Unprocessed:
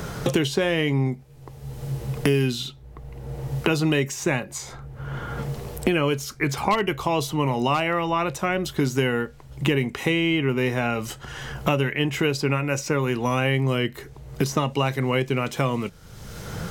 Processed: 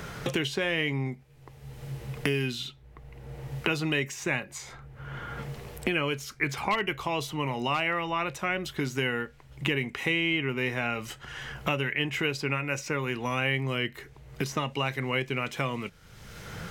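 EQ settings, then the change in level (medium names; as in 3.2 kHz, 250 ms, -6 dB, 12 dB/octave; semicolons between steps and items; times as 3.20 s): peaking EQ 2.2 kHz +8 dB 1.5 oct; -8.5 dB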